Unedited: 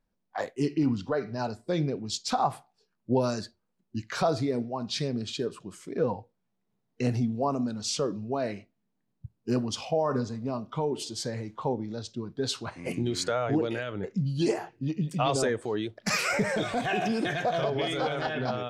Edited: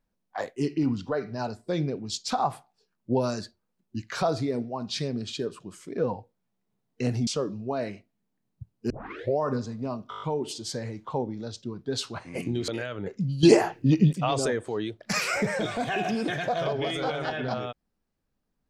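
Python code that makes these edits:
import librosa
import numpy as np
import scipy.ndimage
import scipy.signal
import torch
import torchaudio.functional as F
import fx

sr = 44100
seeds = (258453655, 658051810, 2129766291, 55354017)

y = fx.edit(x, sr, fx.cut(start_s=7.27, length_s=0.63),
    fx.tape_start(start_s=9.53, length_s=0.5),
    fx.stutter(start_s=10.73, slice_s=0.02, count=7),
    fx.cut(start_s=13.19, length_s=0.46),
    fx.clip_gain(start_s=14.4, length_s=0.7, db=10.0), tone=tone)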